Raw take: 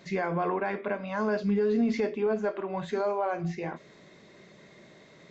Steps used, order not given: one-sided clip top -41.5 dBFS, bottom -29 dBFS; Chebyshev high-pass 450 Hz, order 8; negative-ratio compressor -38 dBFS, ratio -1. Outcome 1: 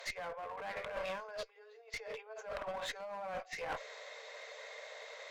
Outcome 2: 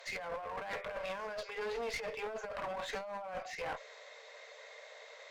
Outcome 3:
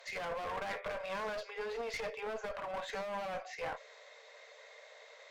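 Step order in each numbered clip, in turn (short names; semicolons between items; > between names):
negative-ratio compressor > Chebyshev high-pass > one-sided clip; Chebyshev high-pass > negative-ratio compressor > one-sided clip; Chebyshev high-pass > one-sided clip > negative-ratio compressor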